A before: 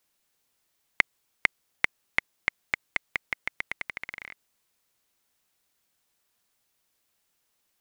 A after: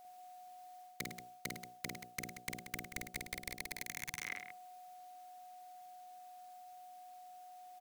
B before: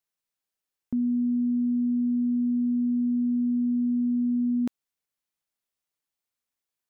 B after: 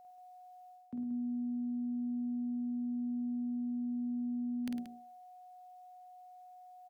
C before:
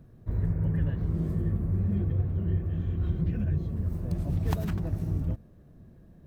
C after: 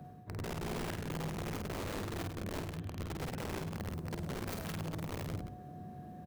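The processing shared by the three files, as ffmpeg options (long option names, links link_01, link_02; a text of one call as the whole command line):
ffmpeg -i in.wav -filter_complex "[0:a]acrossover=split=180|620[link_01][link_02][link_03];[link_02]alimiter=level_in=8dB:limit=-24dB:level=0:latency=1:release=187,volume=-8dB[link_04];[link_03]aeval=exprs='(tanh(8.91*val(0)+0.25)-tanh(0.25))/8.91':channel_layout=same[link_05];[link_01][link_04][link_05]amix=inputs=3:normalize=0,highpass=120,bandreject=frequency=60:width_type=h:width=6,bandreject=frequency=120:width_type=h:width=6,bandreject=frequency=180:width_type=h:width=6,bandreject=frequency=240:width_type=h:width=6,bandreject=frequency=300:width_type=h:width=6,bandreject=frequency=360:width_type=h:width=6,bandreject=frequency=420:width_type=h:width=6,bandreject=frequency=480:width_type=h:width=6,bandreject=frequency=540:width_type=h:width=6,bandreject=frequency=600:width_type=h:width=6,acontrast=38,aeval=exprs='val(0)+0.00178*sin(2*PI*730*n/s)':channel_layout=same,aeval=exprs='(mod(11.9*val(0)+1,2)-1)/11.9':channel_layout=same,areverse,acompressor=threshold=-39dB:ratio=12,areverse,aecho=1:1:49.56|105|180.8:0.631|0.316|0.316" out.wav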